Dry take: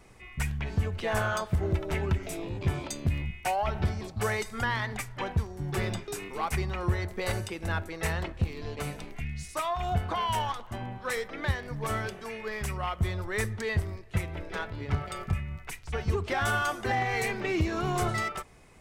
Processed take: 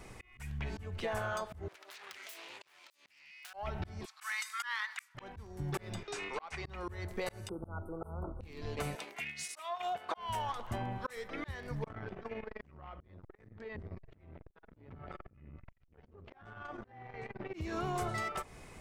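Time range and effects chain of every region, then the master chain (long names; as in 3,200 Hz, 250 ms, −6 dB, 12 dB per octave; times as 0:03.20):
0:01.68–0:03.54: phase distortion by the signal itself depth 0.72 ms + high-pass filter 1,400 Hz + downward compressor 16 to 1, threshold −48 dBFS
0:04.05–0:05.15: Butterworth high-pass 1,100 Hz + volume swells 195 ms
0:06.03–0:06.65: low-pass filter 11,000 Hz 24 dB per octave + three-way crossover with the lows and the highs turned down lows −12 dB, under 470 Hz, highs −23 dB, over 6,800 Hz
0:07.49–0:08.41: linear-phase brick-wall band-stop 1,500–8,400 Hz + high-shelf EQ 3,200 Hz −10.5 dB
0:08.95–0:10.17: high-pass filter 480 Hz + dynamic equaliser 3,100 Hz, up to +4 dB, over −51 dBFS, Q 1.7 + transient designer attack −2 dB, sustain −9 dB
0:11.84–0:17.54: head-to-tape spacing loss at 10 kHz 34 dB + downward compressor 12 to 1, threshold −38 dBFS + saturating transformer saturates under 320 Hz
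whole clip: volume swells 569 ms; dynamic equaliser 690 Hz, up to +4 dB, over −42 dBFS, Q 0.74; downward compressor 6 to 1, threshold −38 dBFS; level +4 dB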